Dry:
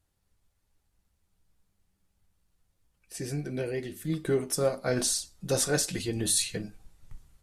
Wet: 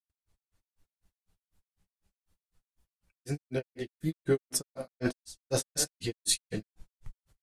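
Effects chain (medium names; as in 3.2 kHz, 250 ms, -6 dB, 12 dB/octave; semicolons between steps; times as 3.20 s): delay 99 ms -13 dB; granulator 132 ms, grains 4 per s, pitch spread up and down by 0 st; trim +2.5 dB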